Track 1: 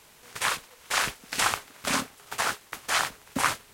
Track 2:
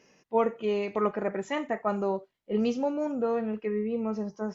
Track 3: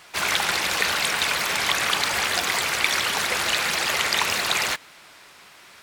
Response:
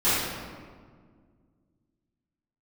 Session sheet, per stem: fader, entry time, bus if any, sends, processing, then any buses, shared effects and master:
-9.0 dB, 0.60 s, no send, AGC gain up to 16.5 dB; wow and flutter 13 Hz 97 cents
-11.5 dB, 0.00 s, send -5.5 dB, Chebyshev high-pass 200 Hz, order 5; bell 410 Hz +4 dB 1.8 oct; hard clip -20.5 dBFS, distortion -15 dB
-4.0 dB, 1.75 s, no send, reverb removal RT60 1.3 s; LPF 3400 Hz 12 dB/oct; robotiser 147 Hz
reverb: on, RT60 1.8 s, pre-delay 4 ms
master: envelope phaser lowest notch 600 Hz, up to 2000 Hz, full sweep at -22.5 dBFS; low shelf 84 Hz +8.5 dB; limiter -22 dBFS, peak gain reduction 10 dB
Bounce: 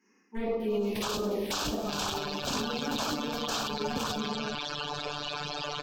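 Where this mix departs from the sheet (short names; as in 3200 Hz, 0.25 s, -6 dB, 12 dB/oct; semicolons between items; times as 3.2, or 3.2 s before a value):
stem 1 -9.0 dB -> +0.5 dB; stem 2: missing bell 410 Hz +4 dB 1.8 oct; stem 3 -4.0 dB -> +8.0 dB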